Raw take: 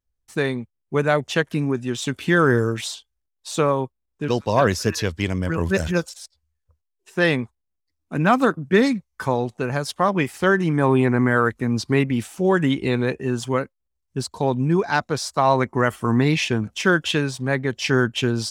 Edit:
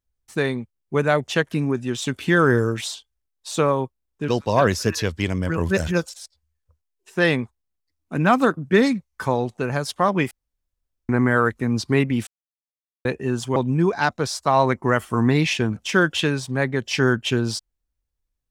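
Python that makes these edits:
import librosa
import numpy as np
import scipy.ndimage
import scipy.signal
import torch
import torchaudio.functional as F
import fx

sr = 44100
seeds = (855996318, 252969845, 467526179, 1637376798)

y = fx.edit(x, sr, fx.room_tone_fill(start_s=10.31, length_s=0.78),
    fx.silence(start_s=12.27, length_s=0.78),
    fx.cut(start_s=13.56, length_s=0.91), tone=tone)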